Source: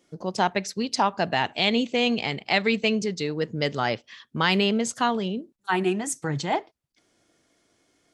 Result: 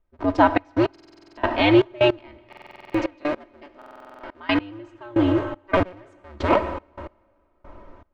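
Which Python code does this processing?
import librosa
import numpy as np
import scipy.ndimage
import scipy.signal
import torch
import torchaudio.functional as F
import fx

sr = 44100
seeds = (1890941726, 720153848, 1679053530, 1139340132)

y = fx.cycle_switch(x, sr, every=2, mode='inverted')
y = fx.highpass(y, sr, hz=390.0, slope=6, at=(2.45, 4.61))
y = fx.dmg_noise_colour(y, sr, seeds[0], colour='brown', level_db=-55.0)
y = scipy.signal.sosfilt(scipy.signal.butter(2, 1900.0, 'lowpass', fs=sr, output='sos'), y)
y = y + 0.55 * np.pad(y, (int(3.2 * sr / 1000.0), 0))[:len(y)]
y = fx.rev_plate(y, sr, seeds[1], rt60_s=3.7, hf_ratio=0.75, predelay_ms=0, drr_db=9.0)
y = fx.step_gate(y, sr, bpm=157, pattern='..xxxx..x....', floor_db=-24.0, edge_ms=4.5)
y = fx.buffer_glitch(y, sr, at_s=(0.91, 2.48, 3.77), block=2048, repeats=9)
y = y * 10.0 ** (6.0 / 20.0)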